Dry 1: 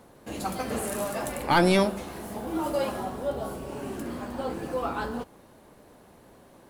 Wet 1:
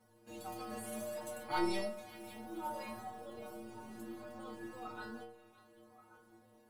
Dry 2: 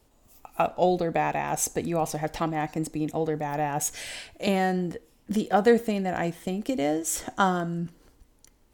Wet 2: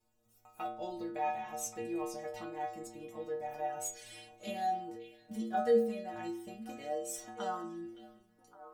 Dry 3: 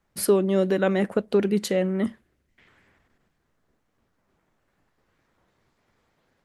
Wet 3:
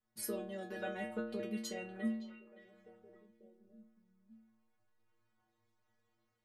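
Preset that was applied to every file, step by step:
stiff-string resonator 110 Hz, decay 0.81 s, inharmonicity 0.008
echo through a band-pass that steps 565 ms, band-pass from 2,800 Hz, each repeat −1.4 octaves, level −11.5 dB
level +1 dB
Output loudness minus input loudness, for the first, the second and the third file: −14.5, −10.5, −18.0 LU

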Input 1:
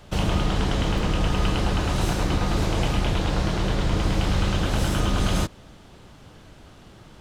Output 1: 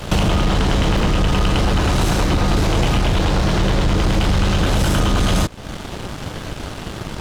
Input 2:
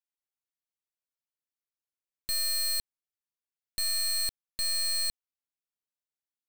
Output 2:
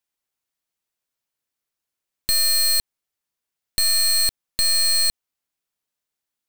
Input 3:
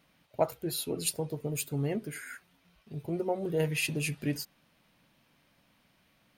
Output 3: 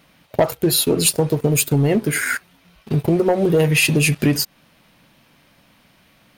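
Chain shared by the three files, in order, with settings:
leveller curve on the samples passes 2
downward compressor 3 to 1, threshold −33 dBFS
loudness normalisation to −18 LKFS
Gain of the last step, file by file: +14.0, +13.5, +16.5 decibels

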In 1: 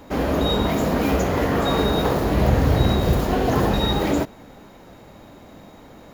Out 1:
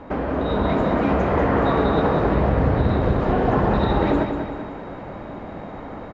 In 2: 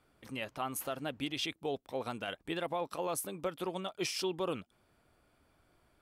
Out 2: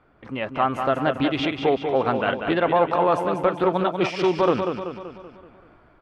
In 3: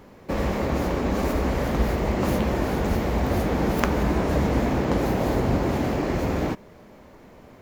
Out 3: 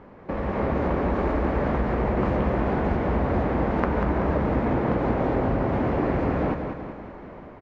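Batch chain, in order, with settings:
downward compressor 3 to 1, threshold −29 dBFS
low-pass filter 1,500 Hz 12 dB per octave
automatic gain control gain up to 5 dB
tilt shelving filter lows −3 dB
repeating echo 191 ms, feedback 52%, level −6.5 dB
highs frequency-modulated by the lows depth 0.14 ms
normalise the peak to −6 dBFS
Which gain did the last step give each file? +6.5, +13.0, +3.0 decibels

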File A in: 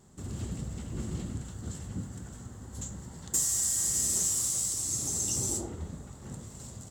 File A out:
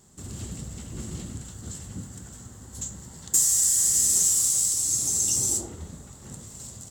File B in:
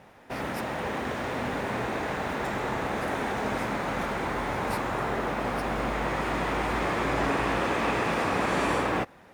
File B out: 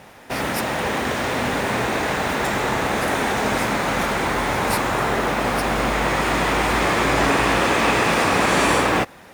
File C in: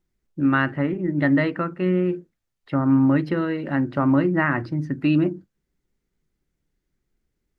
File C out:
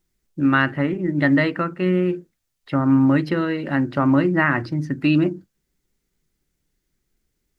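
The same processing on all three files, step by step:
high-shelf EQ 3,000 Hz +9 dB
loudness normalisation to −20 LKFS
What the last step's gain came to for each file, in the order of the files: −0.5, +7.5, +1.5 decibels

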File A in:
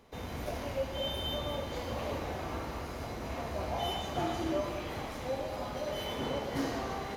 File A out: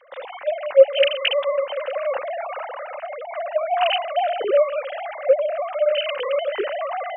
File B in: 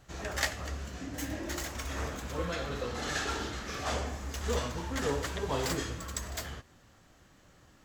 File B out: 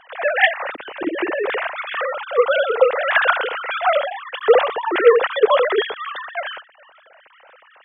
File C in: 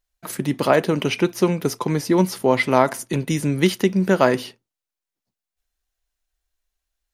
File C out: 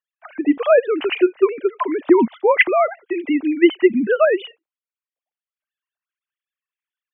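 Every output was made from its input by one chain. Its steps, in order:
three sine waves on the formant tracks
normalise the peak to −1.5 dBFS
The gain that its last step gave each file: +14.0, +16.0, +2.5 decibels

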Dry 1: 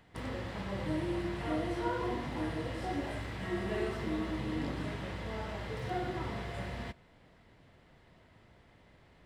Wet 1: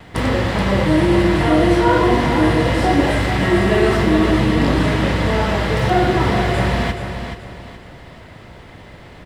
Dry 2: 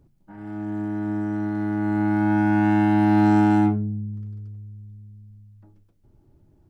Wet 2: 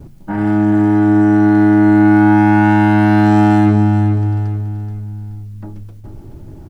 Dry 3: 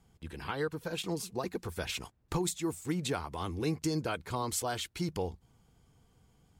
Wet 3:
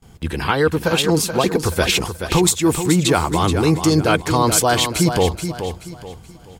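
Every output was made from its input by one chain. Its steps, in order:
reversed playback
downward compressor 5 to 1, threshold −31 dBFS
reversed playback
noise gate with hold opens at −56 dBFS
repeating echo 428 ms, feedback 34%, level −8.5 dB
normalise the peak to −3 dBFS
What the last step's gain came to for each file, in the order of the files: +21.0, +22.5, +19.5 decibels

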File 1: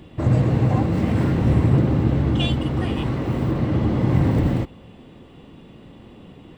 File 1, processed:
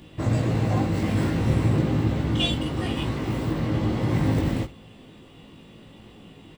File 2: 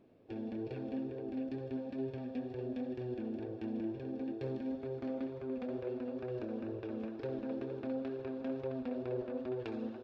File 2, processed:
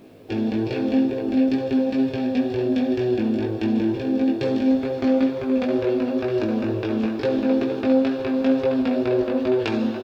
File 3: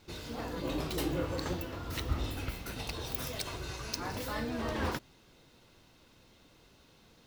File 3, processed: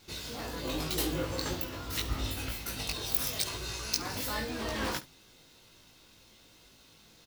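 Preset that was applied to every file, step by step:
high-shelf EQ 2,500 Hz +10 dB
ambience of single reflections 19 ms −3.5 dB, 69 ms −17 dB
normalise the peak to −9 dBFS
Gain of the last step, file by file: −5.5, +15.5, −2.5 decibels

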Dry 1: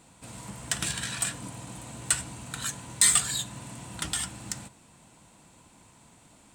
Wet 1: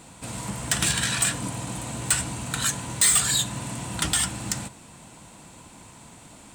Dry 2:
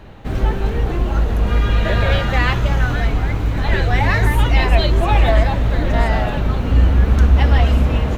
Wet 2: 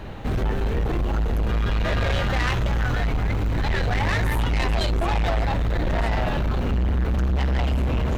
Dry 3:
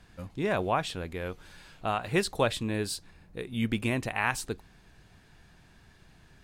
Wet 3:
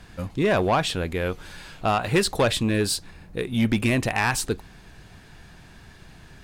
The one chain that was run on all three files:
in parallel at +2 dB: downward compressor, threshold −22 dBFS
on the sum: soft clipping −16 dBFS
loudness normalisation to −24 LKFS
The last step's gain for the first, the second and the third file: +2.0, −3.0, +3.0 decibels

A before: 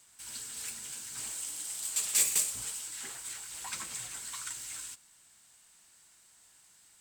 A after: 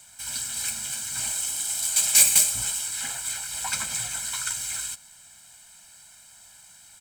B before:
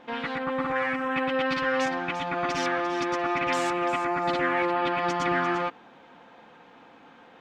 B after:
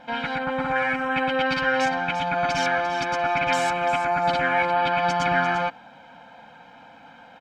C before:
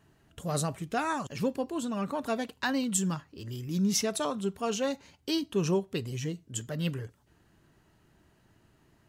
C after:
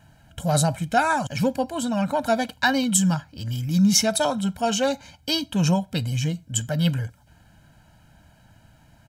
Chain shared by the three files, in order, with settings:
comb filter 1.3 ms, depth 92%
loudness normalisation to −23 LKFS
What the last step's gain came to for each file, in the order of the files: +8.0, +1.5, +7.0 decibels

